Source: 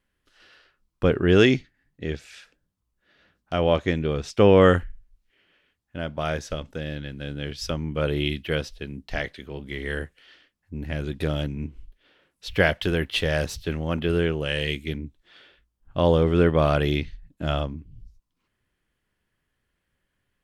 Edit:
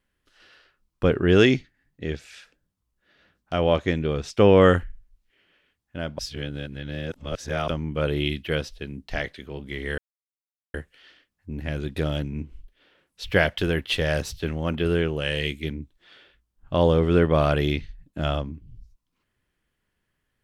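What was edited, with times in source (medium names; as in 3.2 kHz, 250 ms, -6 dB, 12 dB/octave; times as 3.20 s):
6.19–7.68 s: reverse
9.98 s: insert silence 0.76 s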